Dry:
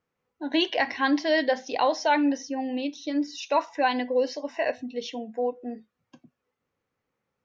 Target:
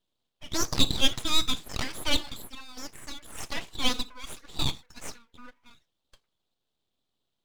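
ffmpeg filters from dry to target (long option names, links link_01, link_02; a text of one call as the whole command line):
ffmpeg -i in.wav -af "highpass=frequency=1700:width_type=q:width=3.9,aeval=exprs='abs(val(0))':channel_layout=same" out.wav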